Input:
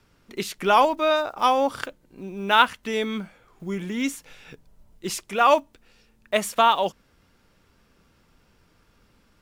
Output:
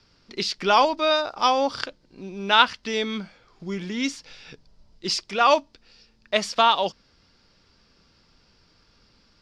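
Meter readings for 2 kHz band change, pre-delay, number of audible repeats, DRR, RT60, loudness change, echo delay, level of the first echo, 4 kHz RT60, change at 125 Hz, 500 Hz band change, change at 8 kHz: +0.5 dB, no reverb audible, no echo audible, no reverb audible, no reverb audible, 0.0 dB, no echo audible, no echo audible, no reverb audible, −1.0 dB, −1.0 dB, −1.0 dB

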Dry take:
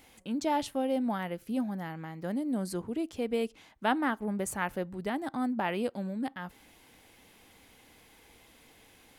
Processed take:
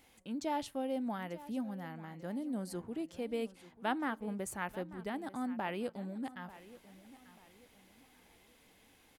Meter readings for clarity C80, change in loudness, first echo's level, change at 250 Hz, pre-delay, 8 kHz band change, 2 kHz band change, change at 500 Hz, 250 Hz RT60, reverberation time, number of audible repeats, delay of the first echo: no reverb audible, −6.5 dB, −17.0 dB, −6.5 dB, no reverb audible, −6.5 dB, −6.5 dB, −6.5 dB, no reverb audible, no reverb audible, 3, 890 ms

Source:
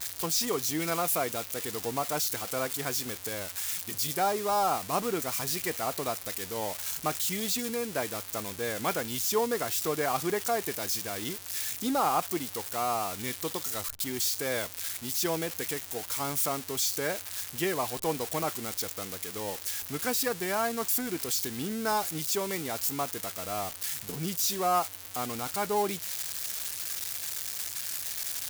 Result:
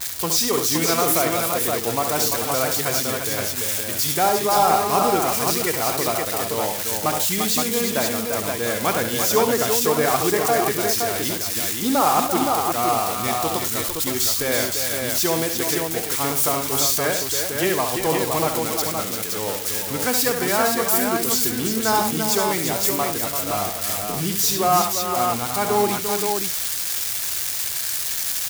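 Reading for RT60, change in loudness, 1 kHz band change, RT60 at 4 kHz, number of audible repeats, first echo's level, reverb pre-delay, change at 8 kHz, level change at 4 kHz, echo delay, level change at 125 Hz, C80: no reverb audible, +10.0 dB, +10.0 dB, no reverb audible, 4, −7.0 dB, no reverb audible, +10.0 dB, +10.0 dB, 68 ms, +10.0 dB, no reverb audible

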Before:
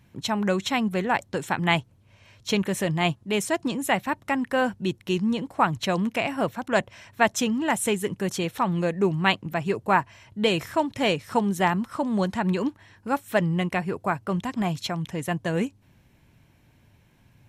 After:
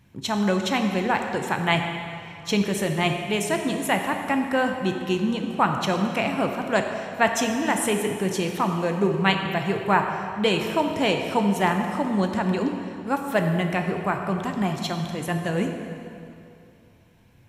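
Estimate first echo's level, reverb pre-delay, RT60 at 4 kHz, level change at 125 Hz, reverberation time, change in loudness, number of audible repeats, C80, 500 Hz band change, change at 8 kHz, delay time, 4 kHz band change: no echo audible, 10 ms, 2.1 s, +1.0 dB, 2.7 s, +1.5 dB, no echo audible, 6.0 dB, +1.5 dB, +1.0 dB, no echo audible, +1.5 dB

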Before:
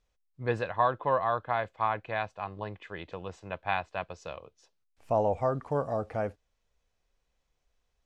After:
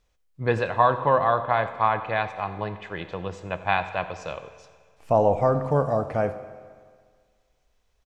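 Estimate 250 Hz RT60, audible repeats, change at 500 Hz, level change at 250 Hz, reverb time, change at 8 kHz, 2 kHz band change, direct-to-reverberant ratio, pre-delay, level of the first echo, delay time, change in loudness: 1.8 s, 1, +7.0 dB, +8.0 dB, 1.8 s, can't be measured, +7.0 dB, 10.0 dB, 16 ms, −18.5 dB, 87 ms, +7.0 dB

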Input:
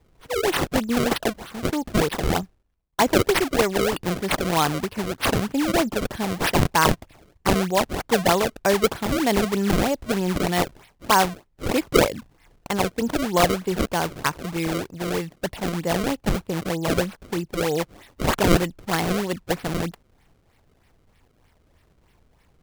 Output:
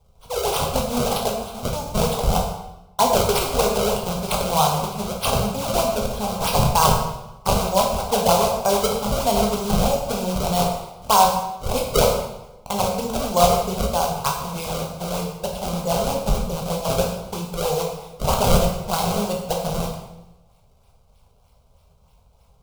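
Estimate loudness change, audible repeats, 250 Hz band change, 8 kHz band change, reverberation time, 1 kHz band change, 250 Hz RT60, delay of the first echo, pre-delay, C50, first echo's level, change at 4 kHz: +1.5 dB, no echo audible, −3.0 dB, +4.5 dB, 0.95 s, +4.0 dB, 1.1 s, no echo audible, 10 ms, 4.0 dB, no echo audible, +2.0 dB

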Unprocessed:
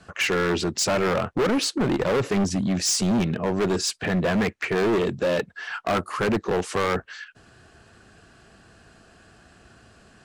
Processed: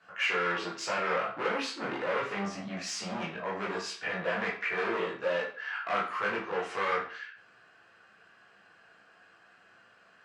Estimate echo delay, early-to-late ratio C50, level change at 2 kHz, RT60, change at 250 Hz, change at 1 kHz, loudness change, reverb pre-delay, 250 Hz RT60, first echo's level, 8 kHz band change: no echo audible, 6.0 dB, −2.5 dB, 0.45 s, −16.0 dB, −3.5 dB, −8.5 dB, 15 ms, 0.45 s, no echo audible, −15.5 dB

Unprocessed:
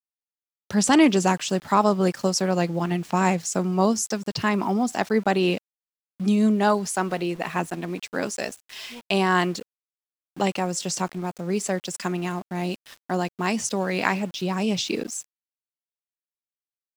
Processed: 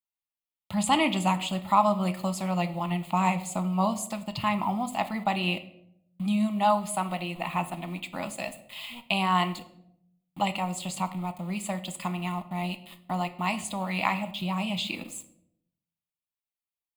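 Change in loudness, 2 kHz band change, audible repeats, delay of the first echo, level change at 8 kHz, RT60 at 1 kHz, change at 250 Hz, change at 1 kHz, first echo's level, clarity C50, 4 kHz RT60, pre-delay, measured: −4.5 dB, −4.5 dB, no echo audible, no echo audible, −8.5 dB, 0.65 s, −6.0 dB, −1.0 dB, no echo audible, 14.5 dB, 0.50 s, 5 ms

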